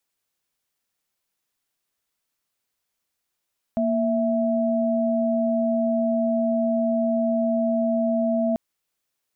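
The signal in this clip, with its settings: chord A#3/E5 sine, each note -22 dBFS 4.79 s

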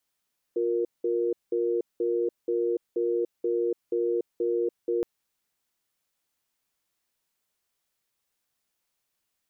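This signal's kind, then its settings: cadence 354 Hz, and 469 Hz, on 0.29 s, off 0.19 s, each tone -26 dBFS 4.47 s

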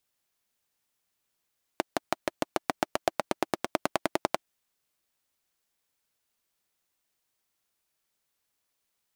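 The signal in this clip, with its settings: single-cylinder engine model, changing speed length 2.63 s, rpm 700, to 1300, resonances 340/630 Hz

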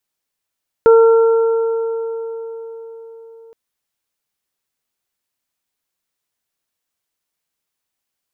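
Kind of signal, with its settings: additive tone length 2.67 s, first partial 455 Hz, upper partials -15/-13.5 dB, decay 4.58 s, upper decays 4.10/3.03 s, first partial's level -4.5 dB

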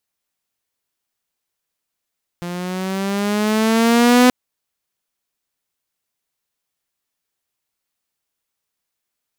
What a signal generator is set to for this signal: gliding synth tone saw, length 1.88 s, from 173 Hz, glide +6.5 st, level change +17 dB, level -5.5 dB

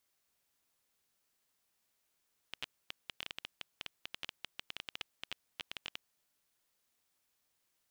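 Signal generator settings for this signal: random clicks 11 per s -22.5 dBFS 3.53 s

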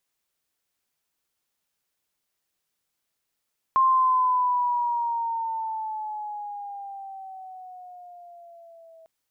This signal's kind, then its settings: gliding synth tone sine, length 5.30 s, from 1.06 kHz, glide -8.5 st, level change -32 dB, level -15.5 dB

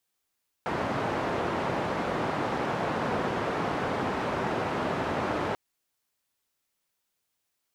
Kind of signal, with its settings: noise band 100–950 Hz, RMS -29.5 dBFS 4.89 s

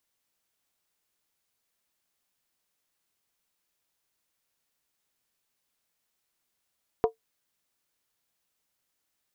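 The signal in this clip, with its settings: skin hit, lowest mode 448 Hz, decay 0.12 s, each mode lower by 6 dB, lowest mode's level -15 dB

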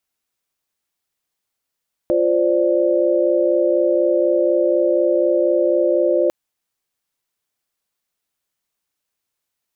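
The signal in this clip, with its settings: chord F4/C5/D5 sine, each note -18 dBFS 4.20 s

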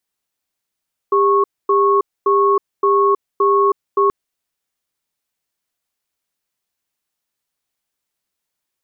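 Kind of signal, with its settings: cadence 400 Hz, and 1.1 kHz, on 0.32 s, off 0.25 s, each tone -13.5 dBFS 2.98 s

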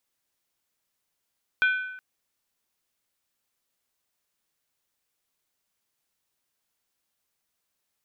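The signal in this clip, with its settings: skin hit length 0.37 s, lowest mode 1.51 kHz, decay 0.91 s, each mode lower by 8 dB, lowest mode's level -17 dB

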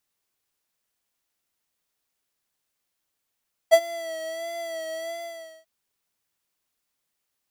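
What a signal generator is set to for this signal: synth patch with vibrato E5, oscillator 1 square, interval 0 st, oscillator 2 level -13 dB, sub -25 dB, filter highpass, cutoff 130 Hz, Q 2.3, filter envelope 2.5 oct, filter decay 0.09 s, attack 27 ms, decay 0.06 s, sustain -17.5 dB, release 0.56 s, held 1.38 s, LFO 1.5 Hz, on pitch 47 cents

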